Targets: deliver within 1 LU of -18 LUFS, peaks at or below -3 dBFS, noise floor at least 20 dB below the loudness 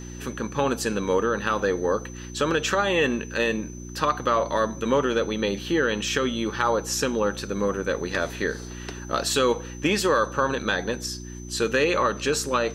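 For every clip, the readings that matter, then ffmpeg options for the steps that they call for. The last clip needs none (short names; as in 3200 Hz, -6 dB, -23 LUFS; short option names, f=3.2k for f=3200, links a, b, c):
hum 60 Hz; harmonics up to 360 Hz; hum level -35 dBFS; steady tone 6100 Hz; tone level -45 dBFS; loudness -24.5 LUFS; peak -8.5 dBFS; loudness target -18.0 LUFS
-> -af "bandreject=f=60:t=h:w=4,bandreject=f=120:t=h:w=4,bandreject=f=180:t=h:w=4,bandreject=f=240:t=h:w=4,bandreject=f=300:t=h:w=4,bandreject=f=360:t=h:w=4"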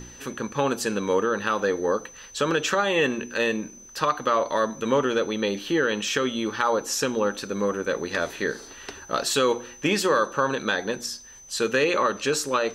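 hum none; steady tone 6100 Hz; tone level -45 dBFS
-> -af "bandreject=f=6.1k:w=30"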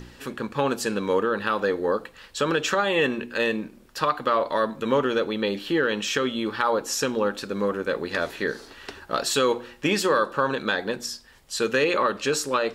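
steady tone none; loudness -25.0 LUFS; peak -8.5 dBFS; loudness target -18.0 LUFS
-> -af "volume=7dB,alimiter=limit=-3dB:level=0:latency=1"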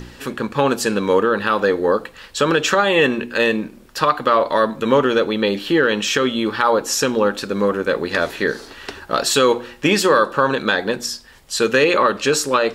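loudness -18.0 LUFS; peak -3.0 dBFS; noise floor -44 dBFS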